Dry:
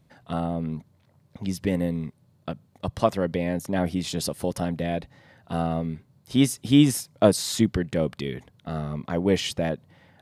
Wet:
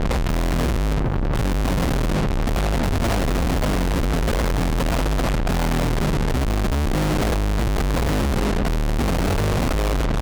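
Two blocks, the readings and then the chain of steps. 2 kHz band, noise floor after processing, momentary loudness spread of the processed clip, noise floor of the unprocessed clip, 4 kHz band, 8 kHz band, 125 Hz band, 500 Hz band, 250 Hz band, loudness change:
+9.5 dB, −20 dBFS, 2 LU, −62 dBFS, +2.5 dB, +1.0 dB, +7.5 dB, +1.5 dB, +1.0 dB, +3.5 dB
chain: sub-octave generator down 2 octaves, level +3 dB
Bessel low-pass filter 510 Hz, order 4
reverb reduction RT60 1.1 s
low-shelf EQ 67 Hz +8 dB
hum removal 51.33 Hz, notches 38
in parallel at +3 dB: output level in coarse steps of 12 dB
on the sum: gate pattern "....xxx.x" 145 BPM −12 dB
power curve on the samples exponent 0.35
fuzz pedal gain 33 dB, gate −39 dBFS
far-end echo of a speakerphone 270 ms, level −8 dB
level −6 dB

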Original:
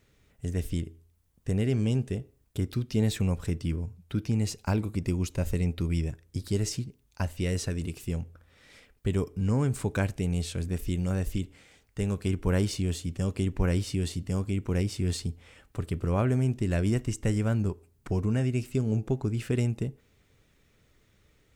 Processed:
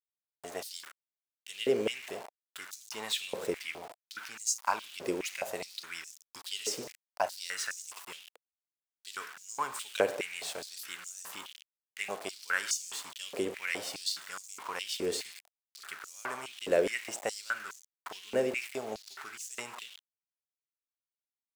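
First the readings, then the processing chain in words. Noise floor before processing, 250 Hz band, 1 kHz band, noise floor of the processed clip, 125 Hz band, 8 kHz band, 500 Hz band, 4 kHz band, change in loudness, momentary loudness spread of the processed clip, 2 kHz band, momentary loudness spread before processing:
−66 dBFS, −15.0 dB, +4.0 dB, below −85 dBFS, −30.5 dB, +4.0 dB, −1.0 dB, +4.0 dB, −6.0 dB, 15 LU, +5.0 dB, 8 LU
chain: four-comb reverb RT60 0.97 s, combs from 29 ms, DRR 12 dB
centre clipping without the shift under −40 dBFS
high-pass on a step sequencer 4.8 Hz 480–6,500 Hz

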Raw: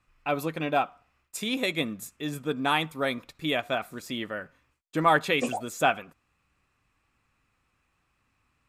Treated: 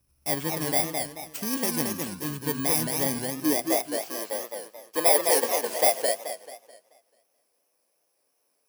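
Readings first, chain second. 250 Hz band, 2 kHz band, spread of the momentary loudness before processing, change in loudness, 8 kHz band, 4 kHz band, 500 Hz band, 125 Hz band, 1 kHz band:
+1.0 dB, −4.5 dB, 12 LU, +3.5 dB, +15.0 dB, +0.5 dB, +3.0 dB, +0.5 dB, −3.0 dB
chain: samples in bit-reversed order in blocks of 32 samples
high-pass filter sweep 62 Hz → 520 Hz, 0:02.70–0:03.80
feedback echo with a swinging delay time 217 ms, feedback 38%, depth 181 cents, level −4 dB

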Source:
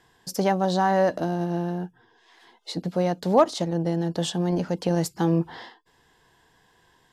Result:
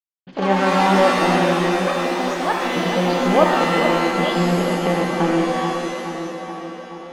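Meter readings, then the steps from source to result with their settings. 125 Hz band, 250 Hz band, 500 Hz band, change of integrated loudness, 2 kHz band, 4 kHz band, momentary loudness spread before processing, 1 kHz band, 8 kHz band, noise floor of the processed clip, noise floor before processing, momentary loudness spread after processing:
+3.0 dB, +6.0 dB, +6.5 dB, +6.5 dB, +15.0 dB, +10.0 dB, 13 LU, +9.0 dB, +5.0 dB, −38 dBFS, −63 dBFS, 13 LU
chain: automatic gain control gain up to 7 dB
downward expander −48 dBFS
in parallel at +2 dB: downward compressor 10 to 1, threshold −26 dBFS, peak gain reduction 18.5 dB
on the sum: mains-hum notches 50/100/150 Hz
log-companded quantiser 4 bits
Butterworth low-pass 3,300 Hz 72 dB per octave
delay with pitch and tempo change per echo 95 ms, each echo +6 semitones, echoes 3, each echo −6 dB
parametric band 84 Hz −7.5 dB 2.3 octaves
on a send: tape delay 427 ms, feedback 74%, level −6 dB, low-pass 1,700 Hz
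on the sum: reverb with rising layers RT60 1.2 s, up +7 semitones, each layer −2 dB, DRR 2.5 dB
level −5.5 dB

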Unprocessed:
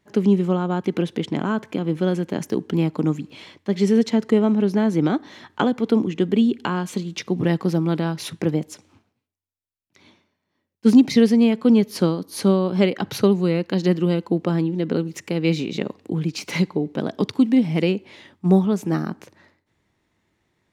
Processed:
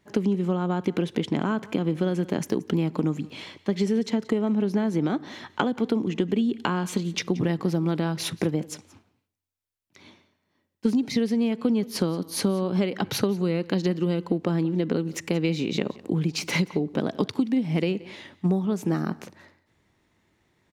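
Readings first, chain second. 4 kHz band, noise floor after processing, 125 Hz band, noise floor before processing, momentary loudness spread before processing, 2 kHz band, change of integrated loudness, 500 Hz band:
−1.5 dB, −74 dBFS, −4.0 dB, −77 dBFS, 10 LU, −2.0 dB, −5.0 dB, −5.5 dB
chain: downward compressor 10 to 1, threshold −22 dBFS, peak gain reduction 14 dB
on a send: single-tap delay 178 ms −21 dB
on the sum: level +2 dB

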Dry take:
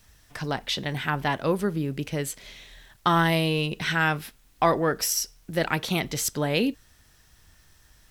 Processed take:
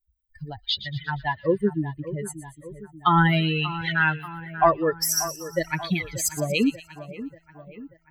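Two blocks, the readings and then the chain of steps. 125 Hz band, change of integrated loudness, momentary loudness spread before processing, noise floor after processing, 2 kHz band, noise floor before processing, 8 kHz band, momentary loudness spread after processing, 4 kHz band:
+1.5 dB, +1.5 dB, 10 LU, −64 dBFS, +1.5 dB, −59 dBFS, +1.5 dB, 20 LU, +0.5 dB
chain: spectral dynamics exaggerated over time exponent 3
echo with a time of its own for lows and highs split 2,100 Hz, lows 586 ms, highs 118 ms, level −13.5 dB
level +7 dB

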